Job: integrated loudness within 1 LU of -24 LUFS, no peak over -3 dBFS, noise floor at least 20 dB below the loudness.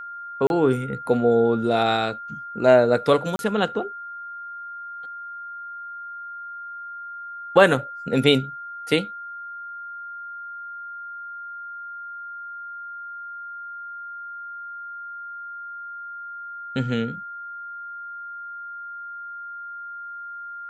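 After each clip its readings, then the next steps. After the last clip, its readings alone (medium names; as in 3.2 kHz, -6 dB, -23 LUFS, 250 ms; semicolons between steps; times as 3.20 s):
dropouts 2; longest dropout 31 ms; steady tone 1.4 kHz; tone level -33 dBFS; loudness -26.0 LUFS; peak level -1.5 dBFS; loudness target -24.0 LUFS
-> interpolate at 0.47/3.36 s, 31 ms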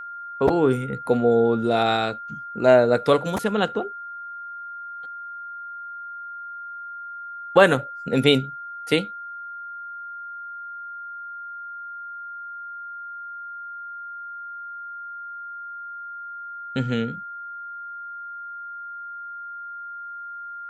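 dropouts 0; steady tone 1.4 kHz; tone level -33 dBFS
-> band-stop 1.4 kHz, Q 30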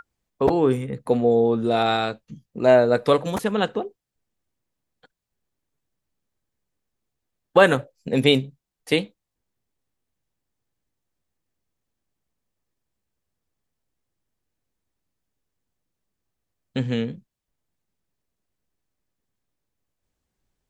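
steady tone not found; loudness -21.0 LUFS; peak level -2.0 dBFS; loudness target -24.0 LUFS
-> trim -3 dB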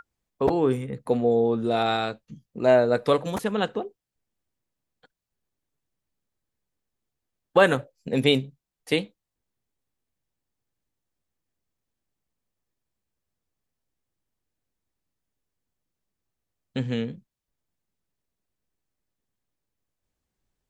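loudness -24.0 LUFS; peak level -5.0 dBFS; noise floor -85 dBFS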